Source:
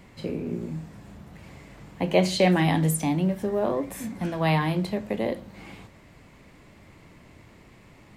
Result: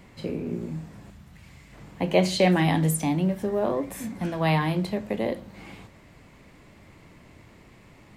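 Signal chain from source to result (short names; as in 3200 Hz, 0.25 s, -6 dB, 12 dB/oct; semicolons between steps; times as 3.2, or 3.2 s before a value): 1.1–1.73 bell 470 Hz -10.5 dB 2.6 oct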